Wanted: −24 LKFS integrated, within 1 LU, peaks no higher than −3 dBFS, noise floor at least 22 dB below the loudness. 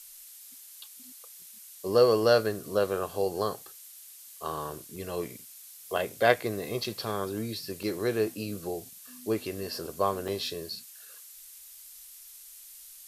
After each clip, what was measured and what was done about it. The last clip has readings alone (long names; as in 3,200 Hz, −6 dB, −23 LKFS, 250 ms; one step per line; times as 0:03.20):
number of dropouts 4; longest dropout 3.6 ms; background noise floor −49 dBFS; target noise floor −52 dBFS; integrated loudness −30.0 LKFS; sample peak −5.5 dBFS; target loudness −24.0 LKFS
→ repair the gap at 0:04.96/0:06.84/0:07.83/0:10.28, 3.6 ms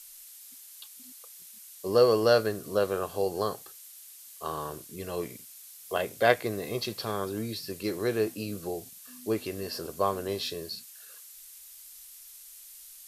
number of dropouts 0; background noise floor −49 dBFS; target noise floor −52 dBFS
→ noise reduction from a noise print 6 dB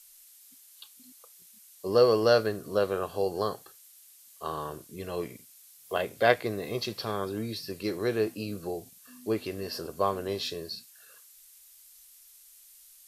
background noise floor −55 dBFS; integrated loudness −30.0 LKFS; sample peak −5.5 dBFS; target loudness −24.0 LKFS
→ level +6 dB
brickwall limiter −3 dBFS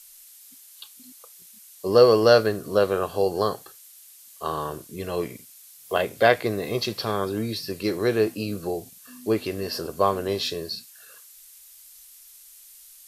integrated loudness −24.0 LKFS; sample peak −3.0 dBFS; background noise floor −49 dBFS